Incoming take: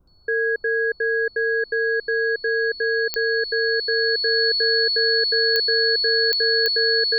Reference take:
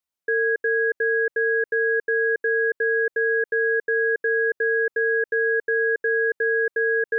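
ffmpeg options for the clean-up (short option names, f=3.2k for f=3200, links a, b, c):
-af "adeclick=t=4,bandreject=f=4.4k:w=30,agate=range=-21dB:threshold=-33dB"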